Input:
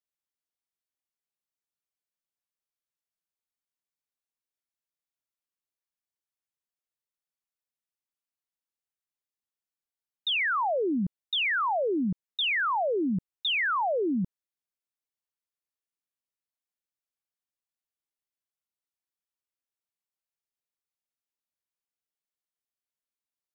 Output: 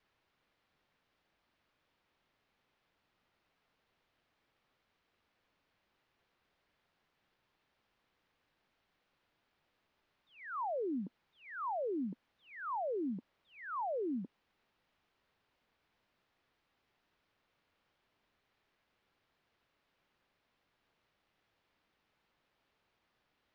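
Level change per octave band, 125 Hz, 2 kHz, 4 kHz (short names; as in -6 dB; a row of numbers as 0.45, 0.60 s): -16.0 dB, -21.5 dB, under -35 dB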